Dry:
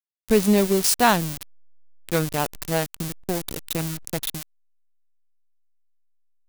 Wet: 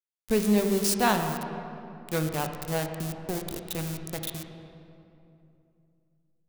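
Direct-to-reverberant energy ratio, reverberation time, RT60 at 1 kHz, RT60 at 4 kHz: 5.0 dB, 2.8 s, 2.6 s, 1.7 s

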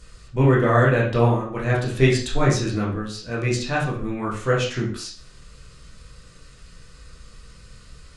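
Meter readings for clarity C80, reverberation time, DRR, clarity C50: 10.5 dB, 0.45 s, -6.0 dB, 5.5 dB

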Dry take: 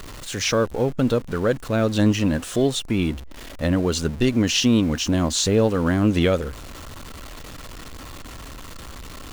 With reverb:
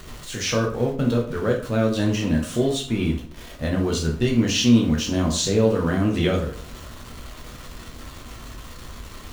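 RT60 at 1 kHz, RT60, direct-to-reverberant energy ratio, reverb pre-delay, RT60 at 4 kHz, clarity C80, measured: 0.45 s, 0.45 s, -0.5 dB, 7 ms, 0.40 s, 12.5 dB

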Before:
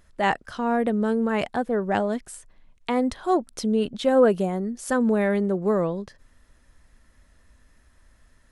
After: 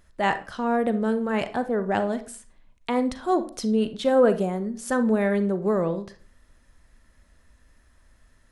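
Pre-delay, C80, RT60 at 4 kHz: 35 ms, 19.0 dB, 0.30 s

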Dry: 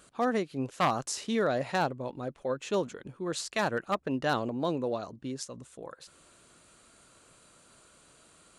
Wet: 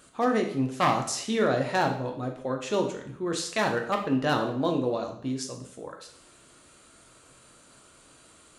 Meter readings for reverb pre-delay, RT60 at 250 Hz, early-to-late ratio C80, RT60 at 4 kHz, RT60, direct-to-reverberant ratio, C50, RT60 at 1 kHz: 4 ms, 0.60 s, 11.5 dB, 0.55 s, 0.65 s, 2.5 dB, 8.0 dB, 0.65 s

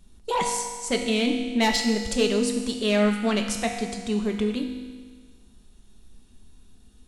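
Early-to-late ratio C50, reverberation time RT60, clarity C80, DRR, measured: 5.0 dB, 1.6 s, 6.5 dB, 2.5 dB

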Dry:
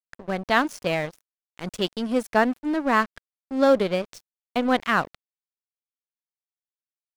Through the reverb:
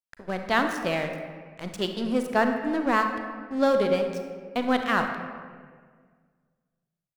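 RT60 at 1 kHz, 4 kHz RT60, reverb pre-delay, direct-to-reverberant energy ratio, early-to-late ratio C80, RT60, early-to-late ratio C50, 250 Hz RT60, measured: 1.6 s, 1.1 s, 34 ms, 5.0 dB, 7.0 dB, 1.7 s, 6.0 dB, 2.1 s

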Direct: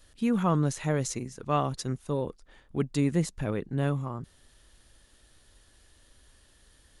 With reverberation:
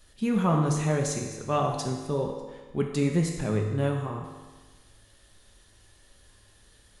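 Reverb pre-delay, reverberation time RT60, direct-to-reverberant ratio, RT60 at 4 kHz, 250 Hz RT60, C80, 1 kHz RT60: 4 ms, 1.3 s, 1.0 dB, 1.3 s, 1.3 s, 6.0 dB, 1.3 s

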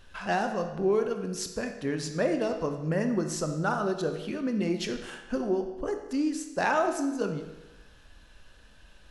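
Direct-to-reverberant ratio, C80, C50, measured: 6.0 dB, 9.5 dB, 7.5 dB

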